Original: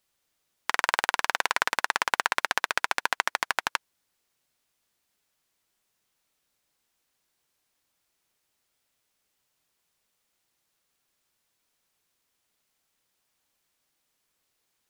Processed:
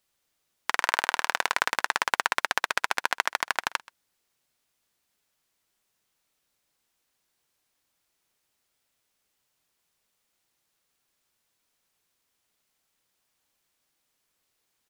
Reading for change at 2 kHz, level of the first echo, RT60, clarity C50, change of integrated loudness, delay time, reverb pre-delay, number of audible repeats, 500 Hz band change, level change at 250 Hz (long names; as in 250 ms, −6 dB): 0.0 dB, −22.5 dB, no reverb audible, no reverb audible, 0.0 dB, 129 ms, no reverb audible, 1, 0.0 dB, 0.0 dB